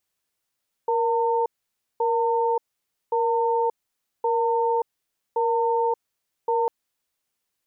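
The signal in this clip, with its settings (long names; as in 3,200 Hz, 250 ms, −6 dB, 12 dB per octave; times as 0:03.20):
tone pair in a cadence 469 Hz, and 907 Hz, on 0.58 s, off 0.54 s, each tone −22 dBFS 5.80 s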